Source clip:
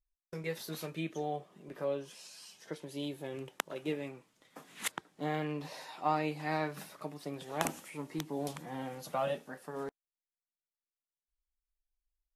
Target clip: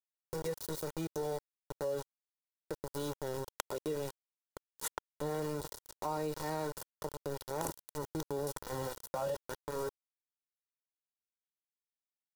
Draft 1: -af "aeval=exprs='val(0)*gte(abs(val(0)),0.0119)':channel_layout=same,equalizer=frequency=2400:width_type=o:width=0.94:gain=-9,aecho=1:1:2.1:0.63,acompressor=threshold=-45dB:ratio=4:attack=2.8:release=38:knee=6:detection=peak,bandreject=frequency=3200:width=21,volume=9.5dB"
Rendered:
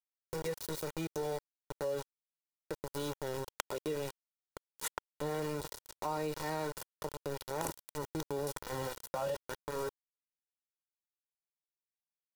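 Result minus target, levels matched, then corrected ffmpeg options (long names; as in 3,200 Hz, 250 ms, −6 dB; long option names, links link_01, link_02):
2,000 Hz band +3.0 dB
-af "aeval=exprs='val(0)*gte(abs(val(0)),0.0119)':channel_layout=same,equalizer=frequency=2400:width_type=o:width=0.94:gain=-16,aecho=1:1:2.1:0.63,acompressor=threshold=-45dB:ratio=4:attack=2.8:release=38:knee=6:detection=peak,bandreject=frequency=3200:width=21,volume=9.5dB"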